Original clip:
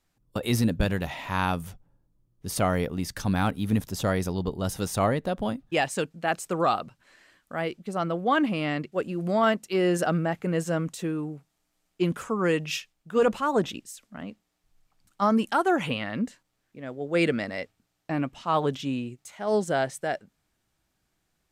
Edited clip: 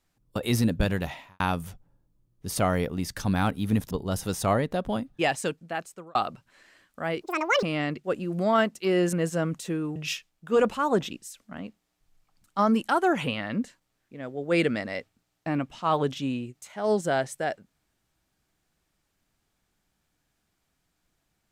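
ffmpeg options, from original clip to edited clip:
-filter_complex "[0:a]asplit=8[a][b][c][d][e][f][g][h];[a]atrim=end=1.4,asetpts=PTS-STARTPTS,afade=t=out:st=1.08:d=0.32:c=qua[i];[b]atrim=start=1.4:end=3.912,asetpts=PTS-STARTPTS,afade=t=in:d=0.004:c=hsin[j];[c]atrim=start=4.438:end=6.68,asetpts=PTS-STARTPTS,afade=t=out:st=1.482:d=0.76[k];[d]atrim=start=6.68:end=7.754,asetpts=PTS-STARTPTS,afade=t=in:d=0.004:c=hsin[l];[e]atrim=start=7.75:end=8.51,asetpts=PTS-STARTPTS,asetrate=82026,aresample=44100,atrim=end_sample=18019,asetpts=PTS-STARTPTS[m];[f]atrim=start=8.506:end=10.012[n];[g]atrim=start=10.468:end=11.302[o];[h]atrim=start=12.588[p];[i][j]concat=n=2:v=0:a=1[q];[k][l]concat=n=2:v=0:a=1[r];[q][r]acrossfade=d=0.004:c1=hsin:c2=hsin[s];[s][m]acrossfade=d=0.004:c1=hsin:c2=hsin[t];[t][n]acrossfade=d=0.004:c1=hsin:c2=hsin[u];[u][o]acrossfade=d=0.004:c1=hsin:c2=hsin[v];[v][p]acrossfade=d=0.004:c1=hsin:c2=hsin"

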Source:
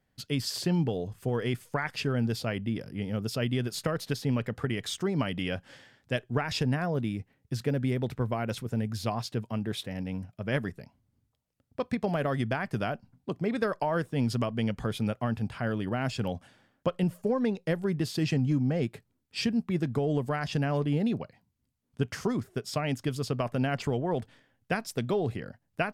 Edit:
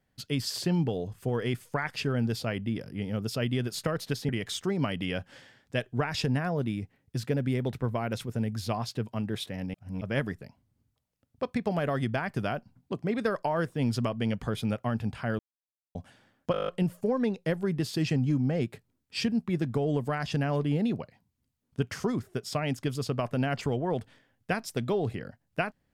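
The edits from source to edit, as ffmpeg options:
-filter_complex "[0:a]asplit=14[a][b][c][d][e][f][g][h][i][j][k][l][m][n];[a]atrim=end=4.292[o];[b]atrim=start=4.658:end=10.112[p];[c]atrim=start=10.108:end=10.382,asetpts=PTS-STARTPTS,areverse[q];[d]atrim=start=10.378:end=15.76,asetpts=PTS-STARTPTS,afade=t=out:st=5.378:d=0.004:c=hsin[r];[e]atrim=start=15.76:end=16.32,asetpts=PTS-STARTPTS,volume=0[s];[f]atrim=start=16.32:end=16.912,asetpts=PTS-STARTPTS,afade=t=in:d=0.004:c=hsin[t];[g]atrim=start=16.888:end=16.912[u];[h]atrim=start=16.888:end=16.912[v];[i]atrim=start=16.888:end=16.912[w];[j]atrim=start=16.888:end=16.912[x];[k]atrim=start=16.888:end=16.912[y];[l]atrim=start=16.888:end=16.912[z];[m]atrim=start=16.888:end=16.912[aa];[n]atrim=start=16.888[ab];[o][p]acrossfade=d=0.004:c1=hsin:c2=hsin[ac];[ac][q]acrossfade=d=0.004:c1=hsin:c2=hsin[ad];[r][s][t]concat=n=3:v=0:a=1[ae];[ad][ae]acrossfade=d=0.004:c1=hsin:c2=hsin[af];[af][u]acrossfade=d=0.004:c1=hsin:c2=hsin[ag];[ag][v]acrossfade=d=0.004:c1=hsin:c2=hsin[ah];[ah][w]acrossfade=d=0.004:c1=hsin:c2=hsin[ai];[ai][x]acrossfade=d=0.004:c1=hsin:c2=hsin[aj];[aj][y]acrossfade=d=0.004:c1=hsin:c2=hsin[ak];[ak][z]acrossfade=d=0.004:c1=hsin:c2=hsin[al];[al][aa]acrossfade=d=0.004:c1=hsin:c2=hsin[am];[am][ab]acrossfade=d=0.004:c1=hsin:c2=hsin"

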